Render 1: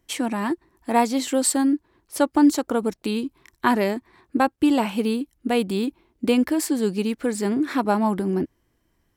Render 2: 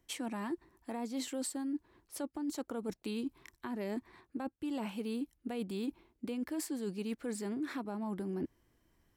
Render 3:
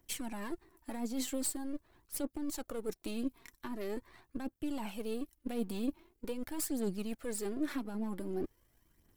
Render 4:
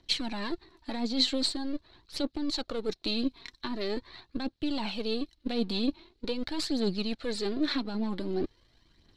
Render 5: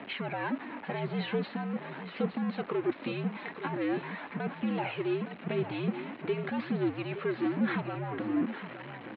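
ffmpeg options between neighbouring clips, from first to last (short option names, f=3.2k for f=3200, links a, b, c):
-filter_complex "[0:a]acrossover=split=440[a][b];[b]acompressor=threshold=-25dB:ratio=6[c];[a][c]amix=inputs=2:normalize=0,alimiter=limit=-16dB:level=0:latency=1:release=179,areverse,acompressor=threshold=-31dB:ratio=10,areverse,volume=-3.5dB"
-af "aeval=exprs='if(lt(val(0),0),0.447*val(0),val(0))':c=same,highshelf=f=9.3k:g=11.5,aphaser=in_gain=1:out_gain=1:delay=4.4:decay=0.46:speed=0.44:type=triangular,volume=1dB"
-af "lowpass=f=4.1k:t=q:w=6.9,volume=6dB"
-filter_complex "[0:a]aeval=exprs='val(0)+0.5*0.02*sgn(val(0))':c=same,asplit=2[a][b];[b]aecho=0:1:866:0.282[c];[a][c]amix=inputs=2:normalize=0,highpass=f=300:t=q:w=0.5412,highpass=f=300:t=q:w=1.307,lowpass=f=2.6k:t=q:w=0.5176,lowpass=f=2.6k:t=q:w=0.7071,lowpass=f=2.6k:t=q:w=1.932,afreqshift=-80,volume=1.5dB"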